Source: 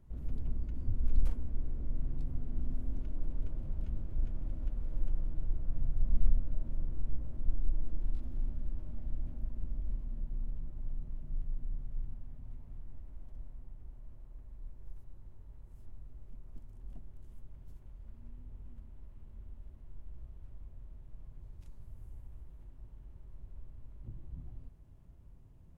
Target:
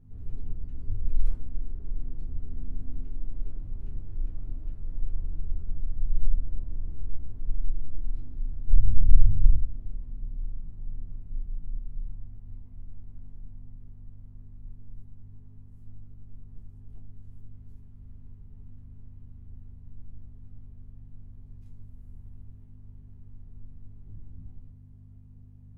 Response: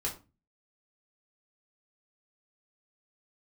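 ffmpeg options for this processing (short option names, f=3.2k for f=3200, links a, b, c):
-filter_complex "[0:a]aeval=exprs='val(0)+0.00447*(sin(2*PI*50*n/s)+sin(2*PI*2*50*n/s)/2+sin(2*PI*3*50*n/s)/3+sin(2*PI*4*50*n/s)/4+sin(2*PI*5*50*n/s)/5)':c=same,asplit=3[a][b][c];[a]afade=t=out:st=8.68:d=0.02[d];[b]asubboost=boost=10.5:cutoff=180,afade=t=in:st=8.68:d=0.02,afade=t=out:st=9.56:d=0.02[e];[c]afade=t=in:st=9.56:d=0.02[f];[d][e][f]amix=inputs=3:normalize=0[g];[1:a]atrim=start_sample=2205[h];[g][h]afir=irnorm=-1:irlink=0,volume=-7.5dB"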